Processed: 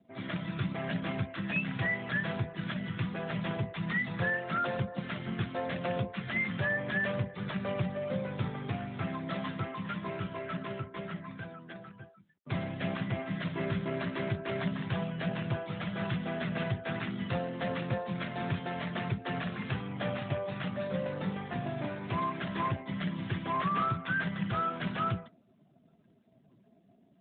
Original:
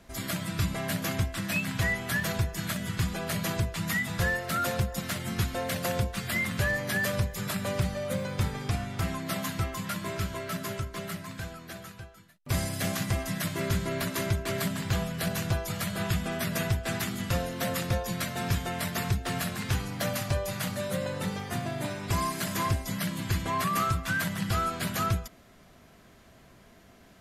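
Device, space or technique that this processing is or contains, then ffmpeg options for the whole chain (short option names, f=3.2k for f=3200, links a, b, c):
mobile call with aggressive noise cancelling: -af "highpass=f=110:w=0.5412,highpass=f=110:w=1.3066,afftdn=nr=20:nf=-49,volume=-1.5dB" -ar 8000 -c:a libopencore_amrnb -b:a 12200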